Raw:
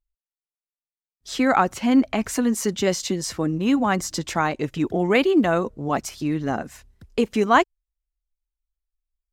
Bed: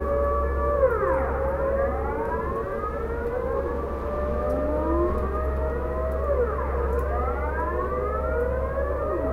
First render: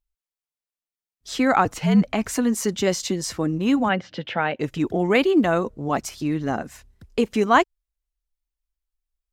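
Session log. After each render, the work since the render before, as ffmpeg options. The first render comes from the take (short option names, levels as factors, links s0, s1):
-filter_complex "[0:a]asettb=1/sr,asplit=3[s0][s1][s2];[s0]atrim=end=1.654[s3];[s1]atrim=start=1.65:end=2.08,asetpts=PTS-STARTPTS,afade=t=in:d=0.004:c=qsin,afade=t=out:st=0.426:d=0.004:c=qsin,afreqshift=-64[s4];[s2]atrim=start=2.076[s5];[s3][s4]acrossfade=d=0.004:c1=hsin:c2=qsin[s6];[s6][s5]acrossfade=d=0.004:c1=qsin:c2=hsin,asplit=3[s7][s8][s9];[s7]afade=t=out:st=3.88:d=0.02[s10];[s8]highpass=f=110:w=0.5412,highpass=f=110:w=1.3066,equalizer=f=160:t=q:w=4:g=-3,equalizer=f=330:t=q:w=4:g=-8,equalizer=f=520:t=q:w=4:g=5,equalizer=f=1100:t=q:w=4:g=-9,equalizer=f=1600:t=q:w=4:g=3,equalizer=f=3000:t=q:w=4:g=7,lowpass=f=3300:w=0.5412,lowpass=f=3300:w=1.3066,afade=t=in:st=3.88:d=0.02,afade=t=out:st=4.59:d=0.02[s11];[s9]afade=t=in:st=4.59:d=0.02[s12];[s10][s11][s12]amix=inputs=3:normalize=0"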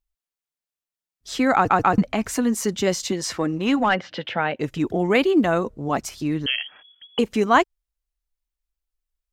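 -filter_complex "[0:a]asettb=1/sr,asplit=3[s0][s1][s2];[s0]atrim=end=3.124[s3];[s1]atrim=start=3.12:end=4.29,asetpts=PTS-STARTPTS,afade=t=in:d=0.004:c=qsin,afade=t=out:st=1.166:d=0.004:c=qsin,asplit=2[s4][s5];[s5]highpass=f=720:p=1,volume=3.55,asoftclip=type=tanh:threshold=0.398[s6];[s4][s6]amix=inputs=2:normalize=0,lowpass=f=3700:p=1,volume=0.501[s7];[s2]atrim=start=4.286[s8];[s3][s7]acrossfade=d=0.004:c1=hsin:c2=qsin[s9];[s9][s8]acrossfade=d=0.004:c1=qsin:c2=hsin,asettb=1/sr,asplit=3[s10][s11][s12];[s10]atrim=end=6.464[s13];[s11]atrim=start=6.46:end=7.19,asetpts=PTS-STARTPTS,afade=t=in:d=0.004:c=qsin,afade=t=out:st=0.726:d=0.004:c=qsin,lowpass=f=2900:t=q:w=0.5098,lowpass=f=2900:t=q:w=0.6013,lowpass=f=2900:t=q:w=0.9,lowpass=f=2900:t=q:w=2.563,afreqshift=-3400[s14];[s12]atrim=start=7.186[s15];[s13][s14]acrossfade=d=0.004:c1=hsin:c2=qsin[s16];[s16][s15]acrossfade=d=0.004:c1=qsin:c2=hsin,asplit=4[s17][s18][s19][s20];[s17]atrim=end=1.702[s21];[s18]atrim=start=1.558:end=1.702[s22];[s19]atrim=start=1.558:end=1.702[s23];[s20]atrim=start=1.978[s24];[s21][s22]acrossfade=d=0.004:c1=hsin:c2=hsin[s25];[s25][s23]acrossfade=d=0.004:c1=hsin:c2=hsin[s26];[s26][s24]acrossfade=d=0.004:c1=hsin:c2=hsin"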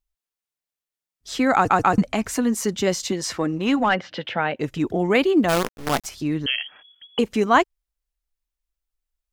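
-filter_complex "[0:a]asettb=1/sr,asplit=3[s0][s1][s2];[s0]atrim=end=1.534[s3];[s1]atrim=start=1.53:end=2.21,asetpts=PTS-STARTPTS,afade=t=in:d=0.004:c=qsin,afade=t=out:st=0.676:d=0.004:c=qsin,equalizer=f=8800:w=0.95:g=10[s4];[s2]atrim=start=2.206[s5];[s3][s4]acrossfade=d=0.004:c1=hsin:c2=qsin[s6];[s6][s5]acrossfade=d=0.004:c1=qsin:c2=hsin,asplit=3[s7][s8][s9];[s7]afade=t=out:st=5.48:d=0.02[s10];[s8]acrusher=bits=4:dc=4:mix=0:aa=0.000001,afade=t=in:st=5.48:d=0.02,afade=t=out:st=6.05:d=0.02[s11];[s9]afade=t=in:st=6.05:d=0.02[s12];[s10][s11][s12]amix=inputs=3:normalize=0"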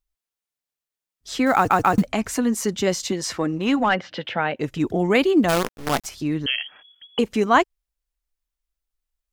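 -filter_complex "[0:a]asettb=1/sr,asplit=3[s0][s1][s2];[s0]atrim=end=1.464[s3];[s1]atrim=start=1.46:end=2.09,asetpts=PTS-STARTPTS,afade=t=in:d=0.004:c=qsin,afade=t=out:st=0.626:d=0.004:c=qsin,acrusher=bits=7:mode=log:mix=0:aa=0.000001[s4];[s2]atrim=start=2.086[s5];[s3][s4]acrossfade=d=0.004:c1=hsin:c2=qsin[s6];[s6][s5]acrossfade=d=0.004:c1=qsin:c2=hsin,asettb=1/sr,asplit=3[s7][s8][s9];[s7]atrim=end=4.804[s10];[s8]atrim=start=4.8:end=5.51,asetpts=PTS-STARTPTS,afade=t=in:d=0.004:c=qsin,afade=t=out:st=0.706:d=0.004:c=qsin,bass=f=250:g=2,treble=f=4000:g=3[s11];[s9]atrim=start=5.506[s12];[s10][s11]acrossfade=d=0.004:c1=hsin:c2=qsin[s13];[s13][s12]acrossfade=d=0.004:c1=qsin:c2=hsin"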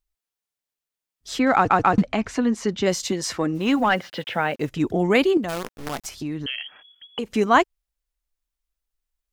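-filter_complex "[0:a]asettb=1/sr,asplit=3[s0][s1][s2];[s0]atrim=end=1.394[s3];[s1]atrim=start=1.39:end=2.86,asetpts=PTS-STARTPTS,afade=t=in:d=0.004:c=qsin,afade=t=out:st=1.466:d=0.004:c=qsin,lowpass=4400[s4];[s2]atrim=start=2.856[s5];[s3][s4]acrossfade=d=0.004:c1=hsin:c2=qsin[s6];[s6][s5]acrossfade=d=0.004:c1=qsin:c2=hsin,asplit=3[s7][s8][s9];[s7]afade=t=out:st=3.54:d=0.02[s10];[s8]acrusher=bits=7:mix=0:aa=0.5,afade=t=in:st=3.54:d=0.02,afade=t=out:st=4.69:d=0.02[s11];[s9]afade=t=in:st=4.69:d=0.02[s12];[s10][s11][s12]amix=inputs=3:normalize=0,asettb=1/sr,asplit=3[s13][s14][s15];[s13]atrim=end=5.374[s16];[s14]atrim=start=5.37:end=7.3,asetpts=PTS-STARTPTS,afade=t=in:d=0.004:c=qsin,afade=t=out:st=1.926:d=0.004:c=qsin,acompressor=threshold=0.0447:ratio=2.5:attack=3.2:release=140:knee=1:detection=peak[s17];[s15]atrim=start=7.296[s18];[s16][s17]acrossfade=d=0.004:c1=hsin:c2=qsin[s19];[s19][s18]acrossfade=d=0.004:c1=qsin:c2=hsin"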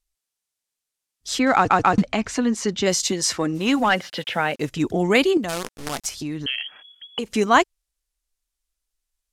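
-af "lowpass=11000,highshelf=f=3900:g=10"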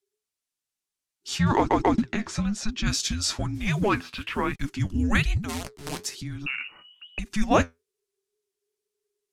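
-af "afreqshift=-430,flanger=delay=2.4:depth=9.8:regen=63:speed=1.1:shape=sinusoidal"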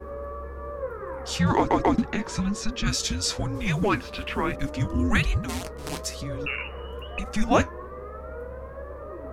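-filter_complex "[1:a]volume=0.251[s0];[0:a][s0]amix=inputs=2:normalize=0"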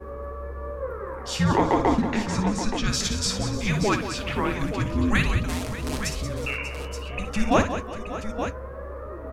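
-af "aecho=1:1:59|181|367|591|876:0.355|0.299|0.119|0.178|0.335"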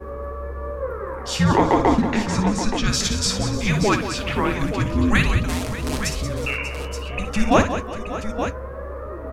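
-af "volume=1.58"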